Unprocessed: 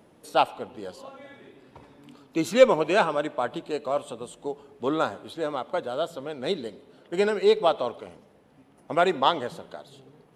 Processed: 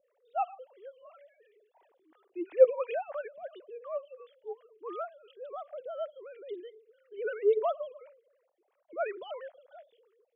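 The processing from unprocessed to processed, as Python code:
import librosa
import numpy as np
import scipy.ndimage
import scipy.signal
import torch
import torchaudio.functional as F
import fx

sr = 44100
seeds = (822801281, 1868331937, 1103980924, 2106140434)

y = fx.sine_speech(x, sr)
y = fx.transient(y, sr, attack_db=-6, sustain_db=3)
y = fx.stagger_phaser(y, sr, hz=2.9)
y = F.gain(torch.from_numpy(y), -3.0).numpy()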